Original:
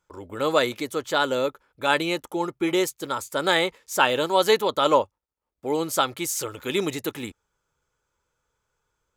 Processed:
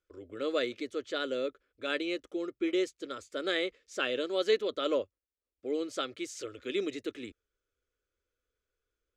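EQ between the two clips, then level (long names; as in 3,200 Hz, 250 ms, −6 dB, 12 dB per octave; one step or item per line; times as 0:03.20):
high-frequency loss of the air 120 metres
phaser with its sweep stopped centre 370 Hz, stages 4
−6.0 dB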